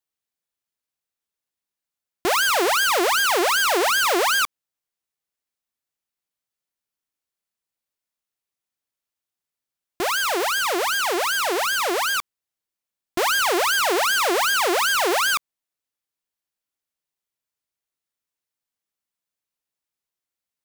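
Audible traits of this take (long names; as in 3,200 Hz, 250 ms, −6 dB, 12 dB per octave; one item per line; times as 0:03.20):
background noise floor −88 dBFS
spectral slope −1.0 dB per octave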